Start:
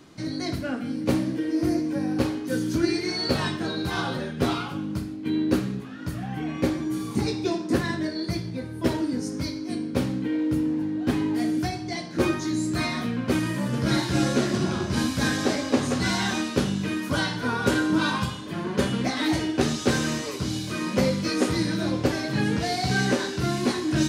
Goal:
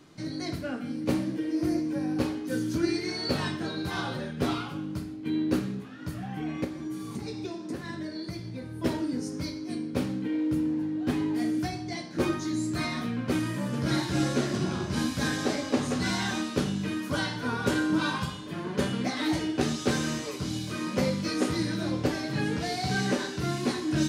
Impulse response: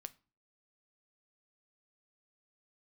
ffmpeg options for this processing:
-filter_complex "[0:a]asplit=3[link_01][link_02][link_03];[link_01]afade=type=out:start_time=6.63:duration=0.02[link_04];[link_02]acompressor=threshold=-28dB:ratio=10,afade=type=in:start_time=6.63:duration=0.02,afade=type=out:start_time=8.7:duration=0.02[link_05];[link_03]afade=type=in:start_time=8.7:duration=0.02[link_06];[link_04][link_05][link_06]amix=inputs=3:normalize=0[link_07];[1:a]atrim=start_sample=2205,asetrate=48510,aresample=44100[link_08];[link_07][link_08]afir=irnorm=-1:irlink=0,volume=2dB"

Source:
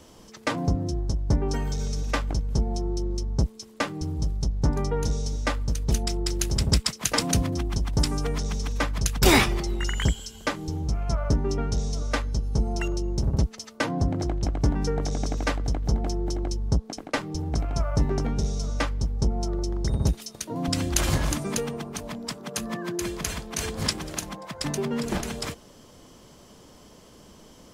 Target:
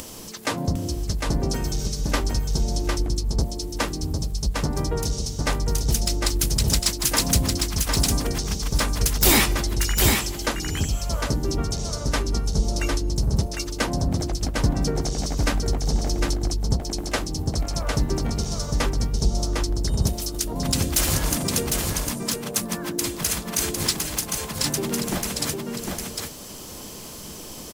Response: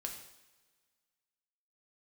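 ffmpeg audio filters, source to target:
-filter_complex "[0:a]aemphasis=mode=production:type=50fm,acompressor=mode=upward:threshold=-31dB:ratio=2.5,asoftclip=type=tanh:threshold=-11.5dB,asplit=4[link_01][link_02][link_03][link_04];[link_02]asetrate=35002,aresample=44100,atempo=1.25992,volume=-9dB[link_05];[link_03]asetrate=37084,aresample=44100,atempo=1.18921,volume=-9dB[link_06];[link_04]asetrate=58866,aresample=44100,atempo=0.749154,volume=-18dB[link_07];[link_01][link_05][link_06][link_07]amix=inputs=4:normalize=0,asplit=2[link_08][link_09];[link_09]aecho=0:1:754:0.631[link_10];[link_08][link_10]amix=inputs=2:normalize=0"

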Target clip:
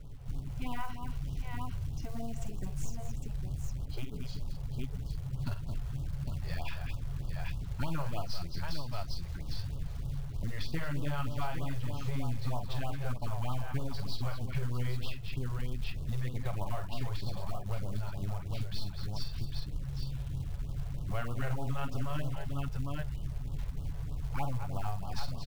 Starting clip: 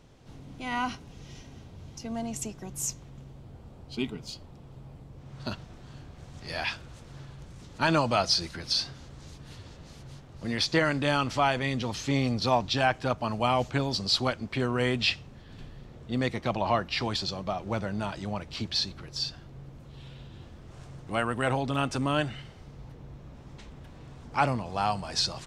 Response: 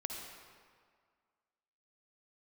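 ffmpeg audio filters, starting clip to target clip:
-af "aeval=exprs='0.282*(cos(1*acos(clip(val(0)/0.282,-1,1)))-cos(1*PI/2))+0.0282*(cos(3*acos(clip(val(0)/0.282,-1,1)))-cos(3*PI/2))+0.00251*(cos(5*acos(clip(val(0)/0.282,-1,1)))-cos(5*PI/2))+0.00398*(cos(6*acos(clip(val(0)/0.282,-1,1)))-cos(6*PI/2))+0.0141*(cos(8*acos(clip(val(0)/0.282,-1,1)))-cos(8*PI/2))':channel_layout=same,aemphasis=mode=reproduction:type=riaa,aecho=1:1:48|219|805:0.398|0.266|0.355,acrusher=bits=7:mode=log:mix=0:aa=0.000001,acompressor=threshold=-30dB:ratio=6,equalizer=frequency=280:width=0.65:gain=-6.5,aecho=1:1:7.1:0.33,afftfilt=real='re*(1-between(b*sr/1024,220*pow(2000/220,0.5+0.5*sin(2*PI*3.2*pts/sr))/1.41,220*pow(2000/220,0.5+0.5*sin(2*PI*3.2*pts/sr))*1.41))':imag='im*(1-between(b*sr/1024,220*pow(2000/220,0.5+0.5*sin(2*PI*3.2*pts/sr))/1.41,220*pow(2000/220,0.5+0.5*sin(2*PI*3.2*pts/sr))*1.41))':win_size=1024:overlap=0.75,volume=1dB"

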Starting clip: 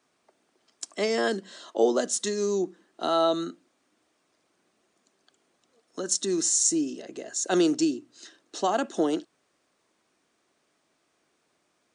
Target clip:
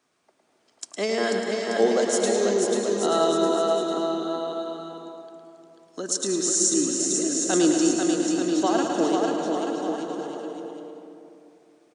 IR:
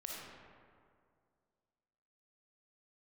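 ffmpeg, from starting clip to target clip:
-filter_complex "[0:a]aecho=1:1:490|882|1196|1446|1647:0.631|0.398|0.251|0.158|0.1,asplit=2[link_01][link_02];[1:a]atrim=start_sample=2205,asetrate=33516,aresample=44100,adelay=109[link_03];[link_02][link_03]afir=irnorm=-1:irlink=0,volume=-2.5dB[link_04];[link_01][link_04]amix=inputs=2:normalize=0"

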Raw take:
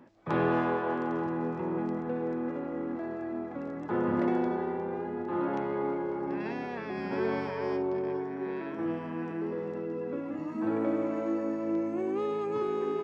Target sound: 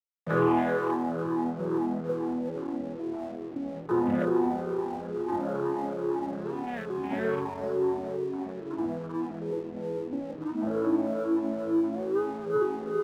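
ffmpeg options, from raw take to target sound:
ffmpeg -i in.wav -af "afftfilt=real='re*pow(10,15/40*sin(2*PI*(0.64*log(max(b,1)*sr/1024/100)/log(2)-(-2.3)*(pts-256)/sr)))':imag='im*pow(10,15/40*sin(2*PI*(0.64*log(max(b,1)*sr/1024/100)/log(2)-(-2.3)*(pts-256)/sr)))':win_size=1024:overlap=0.75,afwtdn=0.0178,aeval=exprs='sgn(val(0))*max(abs(val(0))-0.00282,0)':channel_layout=same" out.wav

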